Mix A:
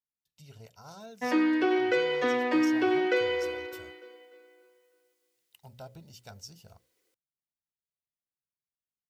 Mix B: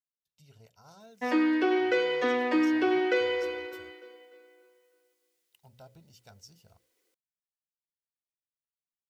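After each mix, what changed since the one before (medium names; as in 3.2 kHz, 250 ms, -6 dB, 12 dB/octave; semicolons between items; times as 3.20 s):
speech -6.5 dB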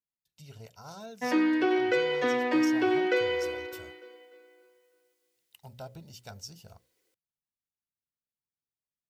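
speech +9.0 dB; background: add band-stop 1.2 kHz, Q 23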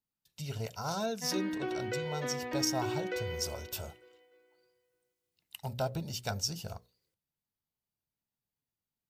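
speech +10.0 dB; background -10.5 dB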